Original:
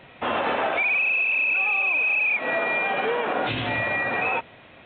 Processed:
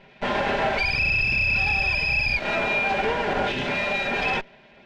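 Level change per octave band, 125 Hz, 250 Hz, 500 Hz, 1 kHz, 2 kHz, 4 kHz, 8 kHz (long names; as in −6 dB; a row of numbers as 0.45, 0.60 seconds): +6.0 dB, +2.5 dB, +0.5 dB, 0.0 dB, −0.5 dB, +5.5 dB, can't be measured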